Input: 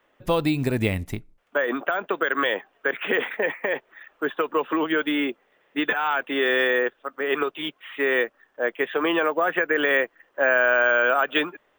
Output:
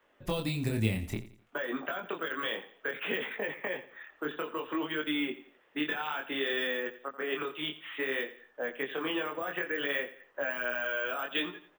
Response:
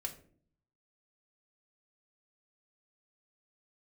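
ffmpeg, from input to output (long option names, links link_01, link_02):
-filter_complex "[0:a]acrossover=split=210|3000[link_01][link_02][link_03];[link_02]acompressor=threshold=-31dB:ratio=6[link_04];[link_01][link_04][link_03]amix=inputs=3:normalize=0,flanger=delay=19.5:depth=7.4:speed=0.59,aecho=1:1:86|172|258:0.178|0.0658|0.0243"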